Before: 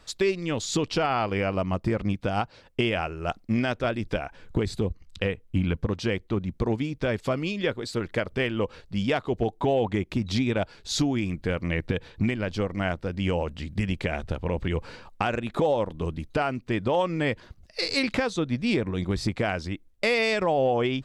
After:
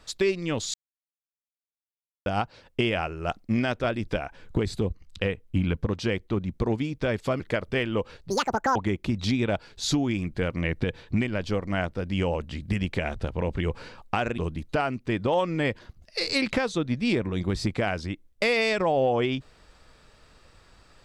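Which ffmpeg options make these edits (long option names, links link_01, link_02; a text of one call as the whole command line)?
ffmpeg -i in.wav -filter_complex "[0:a]asplit=7[link_01][link_02][link_03][link_04][link_05][link_06][link_07];[link_01]atrim=end=0.74,asetpts=PTS-STARTPTS,afade=type=out:start_time=0.736:duration=0.004:curve=hsin[link_08];[link_02]atrim=start=0.74:end=2.26,asetpts=PTS-STARTPTS,volume=0[link_09];[link_03]atrim=start=2.26:end=7.402,asetpts=PTS-STARTPTS,afade=type=in:duration=0.004:curve=hsin[link_10];[link_04]atrim=start=8.038:end=8.944[link_11];[link_05]atrim=start=8.94:end=9.83,asetpts=PTS-STARTPTS,asetrate=85995,aresample=44100[link_12];[link_06]atrim=start=9.826:end=15.452[link_13];[link_07]atrim=start=15.988[link_14];[link_08][link_09][link_10]concat=n=3:v=0:a=1[link_15];[link_15][link_11]acrossfade=duration=0.004:curve1=hsin:curve2=hsin[link_16];[link_16][link_12]acrossfade=duration=0.004:curve1=hsin:curve2=hsin[link_17];[link_17][link_13]acrossfade=duration=0.004:curve1=hsin:curve2=hsin[link_18];[link_18][link_14]acrossfade=duration=0.004:curve1=hsin:curve2=hsin" out.wav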